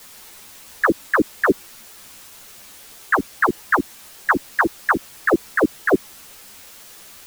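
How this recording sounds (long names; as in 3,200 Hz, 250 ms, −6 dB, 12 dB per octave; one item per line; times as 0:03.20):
phaser sweep stages 2, 3.4 Hz, lowest notch 550–1,200 Hz
a quantiser's noise floor 8 bits, dither triangular
a shimmering, thickened sound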